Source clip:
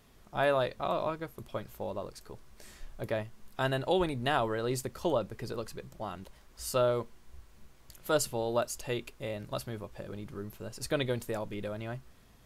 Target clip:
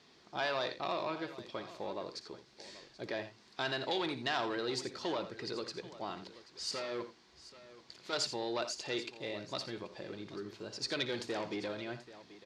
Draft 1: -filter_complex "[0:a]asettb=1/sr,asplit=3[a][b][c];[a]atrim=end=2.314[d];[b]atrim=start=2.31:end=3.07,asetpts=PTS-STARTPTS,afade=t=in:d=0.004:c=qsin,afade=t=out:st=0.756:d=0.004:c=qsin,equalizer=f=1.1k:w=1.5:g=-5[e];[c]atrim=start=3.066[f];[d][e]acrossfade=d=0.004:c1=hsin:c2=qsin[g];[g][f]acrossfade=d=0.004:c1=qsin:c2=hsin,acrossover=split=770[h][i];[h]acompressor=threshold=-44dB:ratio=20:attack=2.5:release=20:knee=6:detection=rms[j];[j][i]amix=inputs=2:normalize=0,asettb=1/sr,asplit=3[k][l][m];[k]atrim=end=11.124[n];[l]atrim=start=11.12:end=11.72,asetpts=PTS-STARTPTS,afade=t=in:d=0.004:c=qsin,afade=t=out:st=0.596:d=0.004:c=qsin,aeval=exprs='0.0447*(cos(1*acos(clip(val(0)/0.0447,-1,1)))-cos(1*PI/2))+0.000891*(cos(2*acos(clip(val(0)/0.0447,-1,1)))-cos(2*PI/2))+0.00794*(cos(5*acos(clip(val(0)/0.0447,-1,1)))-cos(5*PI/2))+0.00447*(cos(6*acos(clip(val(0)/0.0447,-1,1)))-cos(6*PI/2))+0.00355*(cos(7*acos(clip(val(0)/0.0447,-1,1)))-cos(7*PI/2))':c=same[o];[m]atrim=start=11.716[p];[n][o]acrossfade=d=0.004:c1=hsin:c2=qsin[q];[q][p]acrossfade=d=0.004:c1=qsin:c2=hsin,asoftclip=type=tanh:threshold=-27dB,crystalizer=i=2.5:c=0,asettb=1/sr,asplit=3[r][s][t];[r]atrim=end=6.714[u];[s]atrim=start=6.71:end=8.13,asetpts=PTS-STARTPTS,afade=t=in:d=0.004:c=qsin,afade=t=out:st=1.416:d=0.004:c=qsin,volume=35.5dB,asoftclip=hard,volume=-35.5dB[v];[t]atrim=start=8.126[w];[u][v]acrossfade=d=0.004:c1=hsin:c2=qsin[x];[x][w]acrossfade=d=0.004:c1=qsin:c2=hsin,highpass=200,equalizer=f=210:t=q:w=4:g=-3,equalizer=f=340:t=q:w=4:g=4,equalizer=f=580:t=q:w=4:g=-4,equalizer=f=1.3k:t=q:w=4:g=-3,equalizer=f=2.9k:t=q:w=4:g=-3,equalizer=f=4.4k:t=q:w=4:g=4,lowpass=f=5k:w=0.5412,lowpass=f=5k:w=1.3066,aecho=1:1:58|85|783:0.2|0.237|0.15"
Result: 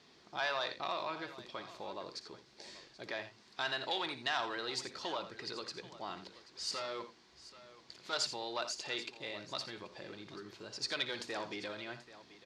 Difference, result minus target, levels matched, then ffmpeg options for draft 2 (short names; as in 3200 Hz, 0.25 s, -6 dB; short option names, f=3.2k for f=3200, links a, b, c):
compressor: peak gain reduction +10 dB
-filter_complex "[0:a]asettb=1/sr,asplit=3[a][b][c];[a]atrim=end=2.314[d];[b]atrim=start=2.31:end=3.07,asetpts=PTS-STARTPTS,afade=t=in:d=0.004:c=qsin,afade=t=out:st=0.756:d=0.004:c=qsin,equalizer=f=1.1k:w=1.5:g=-5[e];[c]atrim=start=3.066[f];[d][e]acrossfade=d=0.004:c1=hsin:c2=qsin[g];[g][f]acrossfade=d=0.004:c1=qsin:c2=hsin,acrossover=split=770[h][i];[h]acompressor=threshold=-33.5dB:ratio=20:attack=2.5:release=20:knee=6:detection=rms[j];[j][i]amix=inputs=2:normalize=0,asettb=1/sr,asplit=3[k][l][m];[k]atrim=end=11.124[n];[l]atrim=start=11.12:end=11.72,asetpts=PTS-STARTPTS,afade=t=in:d=0.004:c=qsin,afade=t=out:st=0.596:d=0.004:c=qsin,aeval=exprs='0.0447*(cos(1*acos(clip(val(0)/0.0447,-1,1)))-cos(1*PI/2))+0.000891*(cos(2*acos(clip(val(0)/0.0447,-1,1)))-cos(2*PI/2))+0.00794*(cos(5*acos(clip(val(0)/0.0447,-1,1)))-cos(5*PI/2))+0.00447*(cos(6*acos(clip(val(0)/0.0447,-1,1)))-cos(6*PI/2))+0.00355*(cos(7*acos(clip(val(0)/0.0447,-1,1)))-cos(7*PI/2))':c=same[o];[m]atrim=start=11.716[p];[n][o]acrossfade=d=0.004:c1=hsin:c2=qsin[q];[q][p]acrossfade=d=0.004:c1=qsin:c2=hsin,asoftclip=type=tanh:threshold=-27dB,crystalizer=i=2.5:c=0,asettb=1/sr,asplit=3[r][s][t];[r]atrim=end=6.714[u];[s]atrim=start=6.71:end=8.13,asetpts=PTS-STARTPTS,afade=t=in:d=0.004:c=qsin,afade=t=out:st=1.416:d=0.004:c=qsin,volume=35.5dB,asoftclip=hard,volume=-35.5dB[v];[t]atrim=start=8.126[w];[u][v]acrossfade=d=0.004:c1=hsin:c2=qsin[x];[x][w]acrossfade=d=0.004:c1=qsin:c2=hsin,highpass=200,equalizer=f=210:t=q:w=4:g=-3,equalizer=f=340:t=q:w=4:g=4,equalizer=f=580:t=q:w=4:g=-4,equalizer=f=1.3k:t=q:w=4:g=-3,equalizer=f=2.9k:t=q:w=4:g=-3,equalizer=f=4.4k:t=q:w=4:g=4,lowpass=f=5k:w=0.5412,lowpass=f=5k:w=1.3066,aecho=1:1:58|85|783:0.2|0.237|0.15"